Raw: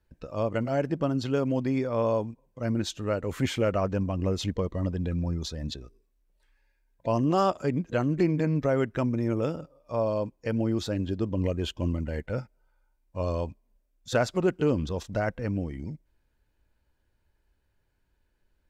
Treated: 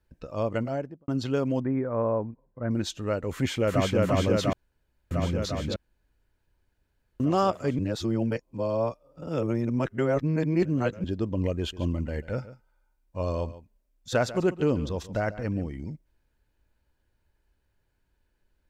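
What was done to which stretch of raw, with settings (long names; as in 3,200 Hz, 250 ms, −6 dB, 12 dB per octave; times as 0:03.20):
0:00.56–0:01.08: fade out and dull
0:01.60–0:02.71: Chebyshev low-pass filter 1,700 Hz, order 3
0:03.32–0:04.01: delay throw 350 ms, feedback 80%, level 0 dB
0:04.53–0:05.11: fill with room tone
0:05.76–0:07.20: fill with room tone
0:07.79–0:11.04: reverse
0:11.58–0:15.68: single-tap delay 143 ms −15.5 dB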